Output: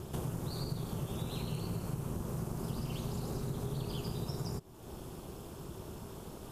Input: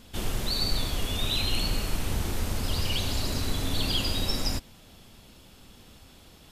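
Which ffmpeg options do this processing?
-af "equalizer=f=250:t=o:w=1:g=7,equalizer=f=1k:t=o:w=1:g=6,equalizer=f=2k:t=o:w=1:g=-9,equalizer=f=4k:t=o:w=1:g=-9,aeval=exprs='val(0)*sin(2*PI*140*n/s)':c=same,acompressor=threshold=-45dB:ratio=4,volume=7.5dB"

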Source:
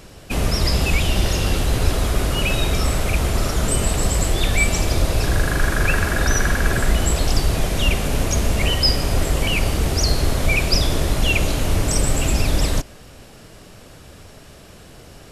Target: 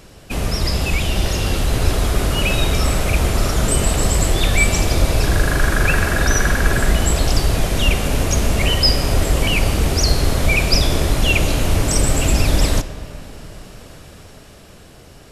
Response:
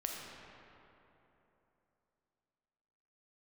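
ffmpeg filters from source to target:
-filter_complex "[0:a]dynaudnorm=f=180:g=17:m=11.5dB,asplit=2[a][b];[1:a]atrim=start_sample=2205[c];[b][c]afir=irnorm=-1:irlink=0,volume=-9.5dB[d];[a][d]amix=inputs=2:normalize=0,volume=-3dB"

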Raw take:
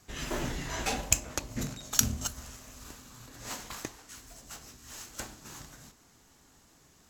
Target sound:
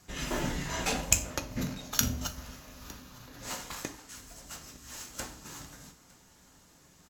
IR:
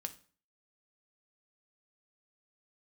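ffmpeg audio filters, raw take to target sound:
-filter_complex "[0:a]asettb=1/sr,asplit=3[a][b][c];[a]atrim=end=1.304[d];[b]atrim=start=1.3:end=3.43,asetpts=PTS-STARTPTS,afade=t=in:d=0.004:c=qsin,afade=t=out:st=2.126:d=0.004:c=qsin,equalizer=f=8.1k:t=o:w=0.47:g=-13[e];[c]atrim=start=3.426[f];[d][e]acrossfade=d=0.004:c1=hsin:c2=qsin[g];[g][f]acrossfade=d=0.004:c1=qsin:c2=hsin,aecho=1:1:908:0.0668[h];[1:a]atrim=start_sample=2205[i];[h][i]afir=irnorm=-1:irlink=0,volume=3.5dB"

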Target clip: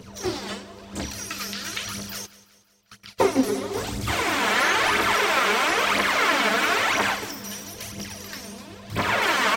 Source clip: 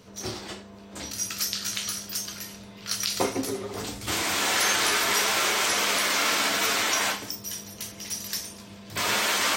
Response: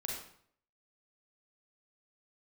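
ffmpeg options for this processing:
-filter_complex "[0:a]acrossover=split=2900[a][b];[b]acompressor=threshold=-40dB:ratio=4:attack=1:release=60[c];[a][c]amix=inputs=2:normalize=0,asplit=3[d][e][f];[d]afade=t=out:st=2.25:d=0.02[g];[e]agate=range=-33dB:threshold=-33dB:ratio=16:detection=peak,afade=t=in:st=2.25:d=0.02,afade=t=out:st=3.18:d=0.02[h];[f]afade=t=in:st=3.18:d=0.02[i];[g][h][i]amix=inputs=3:normalize=0,asettb=1/sr,asplit=3[j][k][l];[j]atrim=end=8.054[m];[k]atrim=start=8.05:end=9.22,asetpts=PTS-STARTPTS,afade=t=in:d=0.004:c=qsin,afade=t=out:st=1.166:d=0.004:c=qsin,equalizer=f=11k:t=o:w=2.8:g=-5[n];[l]atrim=start=9.216[o];[m][n]acrossfade=d=0.004:c1=hsin:c2=qsin[p];[p][o]acrossfade=d=0.004:c1=qsin:c2=hsin,aphaser=in_gain=1:out_gain=1:delay=4.9:decay=0.59:speed=1:type=triangular,aecho=1:1:184|368|552|736:0.112|0.0595|0.0315|0.0167,volume=4dB"

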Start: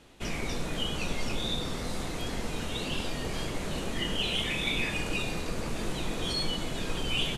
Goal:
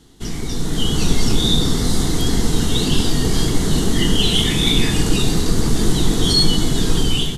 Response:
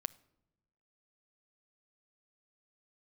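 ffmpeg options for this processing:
-filter_complex "[0:a]dynaudnorm=f=500:g=3:m=9dB,asplit=2[a][b];[b]asuperstop=centerf=1200:order=8:qfactor=0.61[c];[1:a]atrim=start_sample=2205[d];[c][d]afir=irnorm=-1:irlink=0,volume=6.5dB[e];[a][e]amix=inputs=2:normalize=0"

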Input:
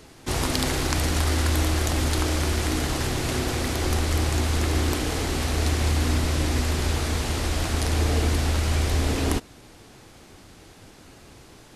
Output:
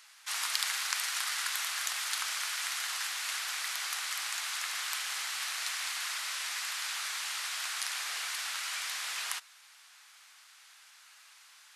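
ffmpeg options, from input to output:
-af "highpass=f=1.2k:w=0.5412,highpass=f=1.2k:w=1.3066,volume=-3dB"

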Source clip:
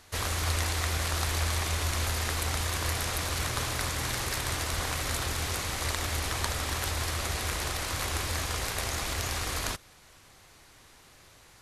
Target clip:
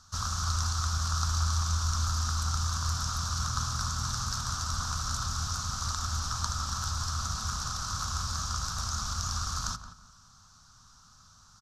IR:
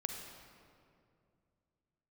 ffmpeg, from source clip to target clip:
-filter_complex "[0:a]firequalizer=gain_entry='entry(210,0);entry(350,-24);entry(1300,6);entry(2000,-25);entry(3600,-6);entry(5700,6);entry(9800,-15)':delay=0.05:min_phase=1,asplit=2[a][b];[b]adelay=173,lowpass=f=1.9k:p=1,volume=-10dB,asplit=2[c][d];[d]adelay=173,lowpass=f=1.9k:p=1,volume=0.29,asplit=2[e][f];[f]adelay=173,lowpass=f=1.9k:p=1,volume=0.29[g];[a][c][e][g]amix=inputs=4:normalize=0"

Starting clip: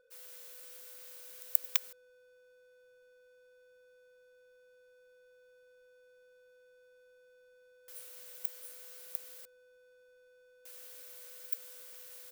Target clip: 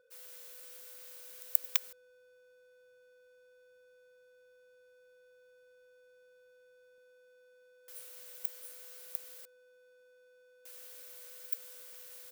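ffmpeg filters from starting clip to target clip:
-af "asetnsamples=n=441:p=0,asendcmd='6.98 highpass f 160',highpass=48"

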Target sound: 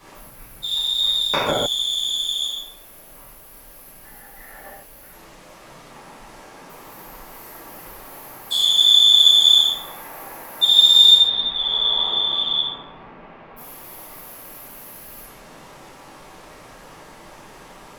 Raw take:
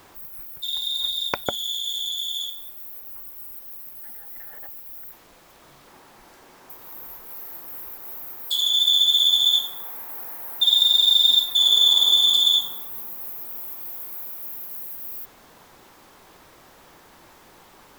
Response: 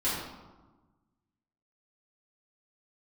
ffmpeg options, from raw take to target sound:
-filter_complex "[0:a]asplit=3[a][b][c];[a]afade=t=out:st=11.12:d=0.02[d];[b]lowpass=f=2.8k:w=0.5412,lowpass=f=2.8k:w=1.3066,afade=t=in:st=11.12:d=0.02,afade=t=out:st=13.56:d=0.02[e];[c]afade=t=in:st=13.56:d=0.02[f];[d][e][f]amix=inputs=3:normalize=0[g];[1:a]atrim=start_sample=2205,atrim=end_sample=4410,asetrate=25578,aresample=44100[h];[g][h]afir=irnorm=-1:irlink=0,volume=-4.5dB"

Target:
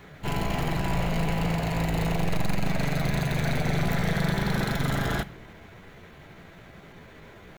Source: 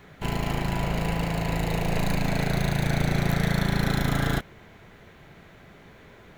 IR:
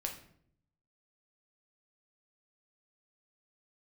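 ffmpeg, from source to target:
-filter_complex "[0:a]aeval=exprs='(tanh(14.1*val(0)+0.15)-tanh(0.15))/14.1':c=same,atempo=0.84,asplit=2[a][b];[1:a]atrim=start_sample=2205[c];[b][c]afir=irnorm=-1:irlink=0,volume=-8.5dB[d];[a][d]amix=inputs=2:normalize=0"

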